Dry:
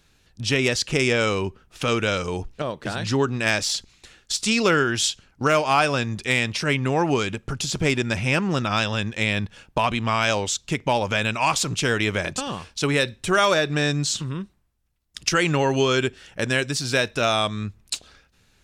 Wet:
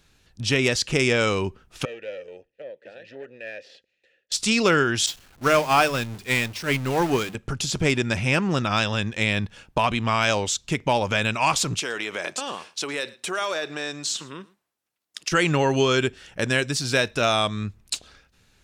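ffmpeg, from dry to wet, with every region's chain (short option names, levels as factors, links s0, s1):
-filter_complex "[0:a]asettb=1/sr,asplit=3[s0][s1][s2];[s0]atrim=end=1.854[s3];[s1]atrim=start=1.85:end=4.32,asetpts=PTS-STARTPTS,afade=t=in:d=0.004:c=qsin,afade=t=out:st=2.466:d=0.004:c=qsin,acrossover=split=6200[s4][s5];[s5]acompressor=threshold=0.00447:ratio=4:attack=1:release=60[s6];[s4][s6]amix=inputs=2:normalize=0,aeval=exprs='(tanh(8.91*val(0)+0.55)-tanh(0.55))/8.91':c=same,asplit=3[s7][s8][s9];[s7]bandpass=f=530:t=q:w=8,volume=1[s10];[s8]bandpass=f=1840:t=q:w=8,volume=0.501[s11];[s9]bandpass=f=2480:t=q:w=8,volume=0.355[s12];[s10][s11][s12]amix=inputs=3:normalize=0[s13];[s2]atrim=start=4.316[s14];[s3][s13]acrossfade=d=0.004:c1=hsin:c2=qsin[s15];[s15][s14]acrossfade=d=0.004:c1=qsin:c2=hsin,asettb=1/sr,asplit=3[s16][s17][s18];[s16]atrim=end=5.064[s19];[s17]atrim=start=5.06:end=7.35,asetpts=PTS-STARTPTS,afade=t=in:d=0.004:c=qsin,afade=t=out:st=2.286:d=0.004:c=qsin,aeval=exprs='val(0)+0.5*0.0794*sgn(val(0))':c=same,agate=range=0.0224:threshold=0.178:ratio=3:release=100:detection=peak,bandreject=f=50:t=h:w=6,bandreject=f=100:t=h:w=6,bandreject=f=150:t=h:w=6,bandreject=f=200:t=h:w=6[s20];[s18]atrim=start=7.346[s21];[s19][s20]acrossfade=d=0.004:c1=hsin:c2=qsin[s22];[s22][s21]acrossfade=d=0.004:c1=qsin:c2=hsin,asettb=1/sr,asplit=3[s23][s24][s25];[s23]atrim=end=11.794[s26];[s24]atrim=start=11.79:end=15.32,asetpts=PTS-STARTPTS,afade=t=in:d=0.004:c=qsin,afade=t=out:st=3.526:d=0.004:c=qsin,acompressor=threshold=0.0794:ratio=6:attack=3.2:release=140:knee=1:detection=peak,highpass=370,aecho=1:1:112:0.0794,atrim=end_sample=155673[s27];[s25]atrim=start=15.316[s28];[s26][s27]acrossfade=d=0.004:c1=hsin:c2=qsin[s29];[s29][s28]acrossfade=d=0.004:c1=qsin:c2=hsin"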